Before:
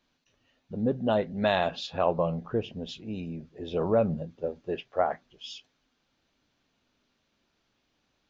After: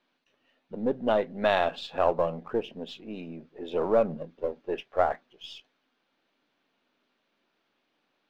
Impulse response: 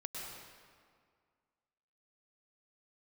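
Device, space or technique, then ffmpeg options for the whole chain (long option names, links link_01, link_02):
crystal radio: -af "highpass=270,lowpass=3400,aeval=exprs='if(lt(val(0),0),0.708*val(0),val(0))':channel_layout=same,volume=3dB"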